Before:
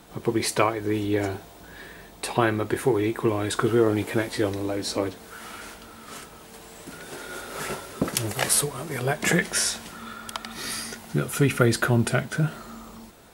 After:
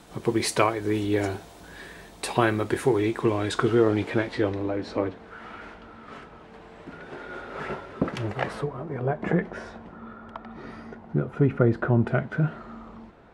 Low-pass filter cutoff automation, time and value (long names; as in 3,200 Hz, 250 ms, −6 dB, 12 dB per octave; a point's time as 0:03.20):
0:02.54 11,000 Hz
0:03.99 4,600 Hz
0:04.75 2,100 Hz
0:08.25 2,100 Hz
0:08.87 1,000 Hz
0:11.75 1,000 Hz
0:12.46 1,900 Hz